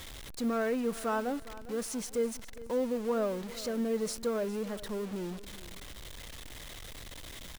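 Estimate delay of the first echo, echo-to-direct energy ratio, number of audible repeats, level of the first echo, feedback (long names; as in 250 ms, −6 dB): 406 ms, −16.5 dB, 2, −17.0 dB, 33%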